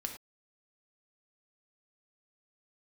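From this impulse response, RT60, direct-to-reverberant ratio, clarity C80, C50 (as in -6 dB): not exponential, 3.0 dB, 11.0 dB, 7.5 dB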